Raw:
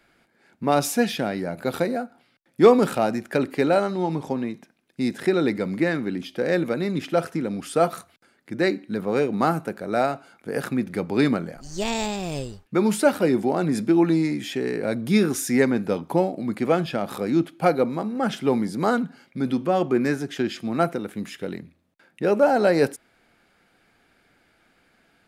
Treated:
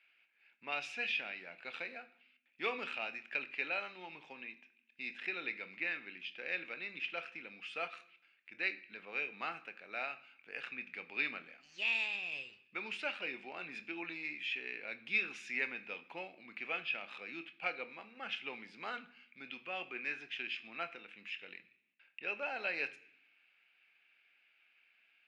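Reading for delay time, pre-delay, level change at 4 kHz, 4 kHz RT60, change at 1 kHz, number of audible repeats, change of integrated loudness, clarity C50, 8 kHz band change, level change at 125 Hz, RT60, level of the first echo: no echo audible, 22 ms, −9.0 dB, 0.85 s, −20.0 dB, no echo audible, −16.5 dB, 17.5 dB, below −25 dB, −36.0 dB, 0.65 s, no echo audible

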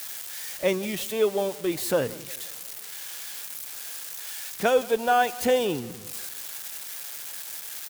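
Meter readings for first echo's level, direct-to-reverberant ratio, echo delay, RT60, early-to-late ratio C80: −20.5 dB, no reverb audible, 176 ms, no reverb audible, no reverb audible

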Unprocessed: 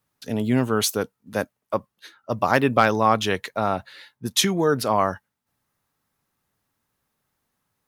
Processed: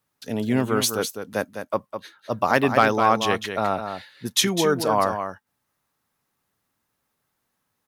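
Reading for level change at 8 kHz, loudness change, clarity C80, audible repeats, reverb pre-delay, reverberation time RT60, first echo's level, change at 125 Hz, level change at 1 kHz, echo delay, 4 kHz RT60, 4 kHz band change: +0.5 dB, 0.0 dB, no reverb audible, 1, no reverb audible, no reverb audible, −8.0 dB, −2.5 dB, +0.5 dB, 205 ms, no reverb audible, +0.5 dB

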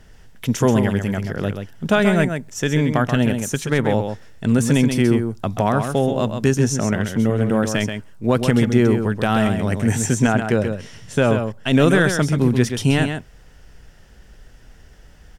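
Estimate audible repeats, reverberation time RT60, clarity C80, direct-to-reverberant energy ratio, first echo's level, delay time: 1, no reverb audible, no reverb audible, no reverb audible, −7.0 dB, 132 ms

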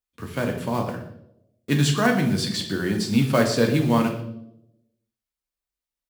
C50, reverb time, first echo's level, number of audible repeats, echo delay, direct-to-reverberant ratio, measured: 7.5 dB, 0.80 s, −16.0 dB, 1, 120 ms, 2.0 dB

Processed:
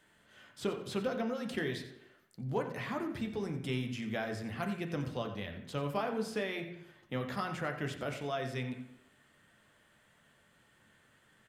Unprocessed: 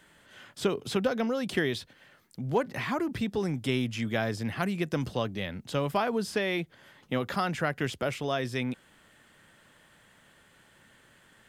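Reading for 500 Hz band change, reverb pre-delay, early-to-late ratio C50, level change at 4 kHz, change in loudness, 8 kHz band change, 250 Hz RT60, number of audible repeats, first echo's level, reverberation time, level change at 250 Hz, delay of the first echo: −6.5 dB, 9 ms, 8.0 dB, −8.0 dB, −6.5 dB, −8.0 dB, 0.75 s, 1, −12.5 dB, 0.80 s, −6.5 dB, 89 ms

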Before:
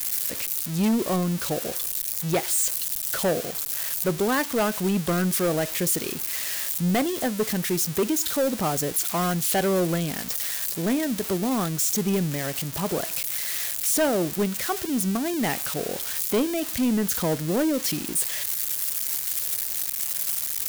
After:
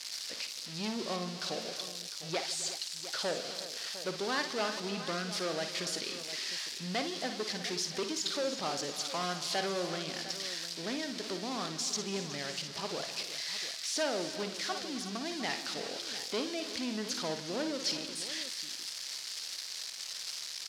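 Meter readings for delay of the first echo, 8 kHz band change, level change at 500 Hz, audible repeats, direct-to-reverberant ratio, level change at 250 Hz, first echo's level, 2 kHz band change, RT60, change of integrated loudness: 56 ms, −11.5 dB, −10.5 dB, 6, no reverb audible, −14.5 dB, −9.0 dB, −6.5 dB, no reverb audible, −11.0 dB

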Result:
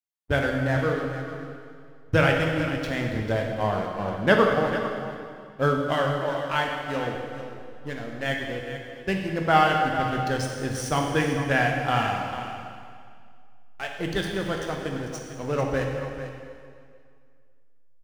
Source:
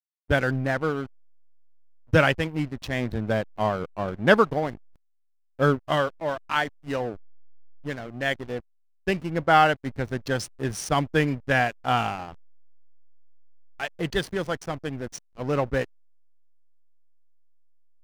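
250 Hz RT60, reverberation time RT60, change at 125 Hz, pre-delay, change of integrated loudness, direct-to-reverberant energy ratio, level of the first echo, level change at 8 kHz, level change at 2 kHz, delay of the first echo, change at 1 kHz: 2.2 s, 2.1 s, +1.0 dB, 5 ms, 0.0 dB, 0.5 dB, −11.5 dB, +0.5 dB, 0.0 dB, 446 ms, +0.5 dB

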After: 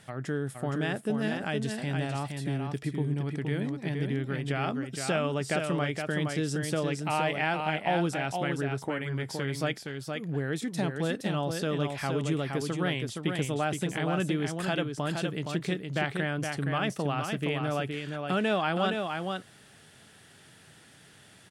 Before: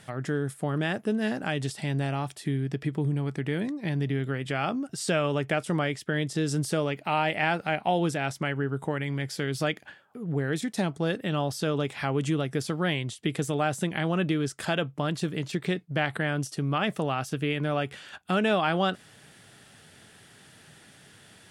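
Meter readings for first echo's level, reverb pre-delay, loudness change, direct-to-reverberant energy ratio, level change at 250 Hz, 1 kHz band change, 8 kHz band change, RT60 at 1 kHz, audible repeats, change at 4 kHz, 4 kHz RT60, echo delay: −5.0 dB, no reverb audible, −2.0 dB, no reverb audible, −2.0 dB, −2.0 dB, −2.0 dB, no reverb audible, 1, −2.0 dB, no reverb audible, 468 ms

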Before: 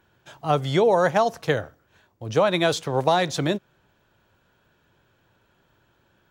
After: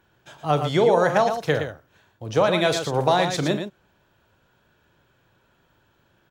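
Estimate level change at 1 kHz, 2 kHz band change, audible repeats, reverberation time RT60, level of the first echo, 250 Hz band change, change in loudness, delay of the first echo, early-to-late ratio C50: +1.0 dB, +1.0 dB, 2, no reverb audible, −12.0 dB, +1.0 dB, +1.0 dB, 40 ms, no reverb audible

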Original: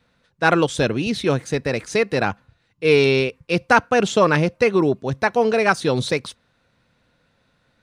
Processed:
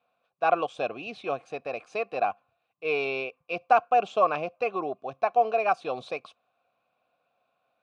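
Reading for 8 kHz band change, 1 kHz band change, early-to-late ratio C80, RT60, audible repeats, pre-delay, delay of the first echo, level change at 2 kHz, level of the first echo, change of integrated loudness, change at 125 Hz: below −20 dB, −2.5 dB, no reverb audible, no reverb audible, no echo audible, no reverb audible, no echo audible, −12.0 dB, no echo audible, −8.5 dB, −25.5 dB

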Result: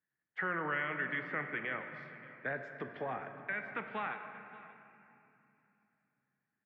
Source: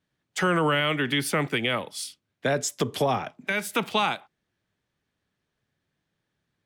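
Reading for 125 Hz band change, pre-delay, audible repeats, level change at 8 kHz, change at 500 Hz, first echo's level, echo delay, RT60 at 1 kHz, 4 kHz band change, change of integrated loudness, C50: −18.0 dB, 3 ms, 1, below −40 dB, −15.0 dB, −19.0 dB, 580 ms, 2.8 s, −26.0 dB, −12.5 dB, 7.0 dB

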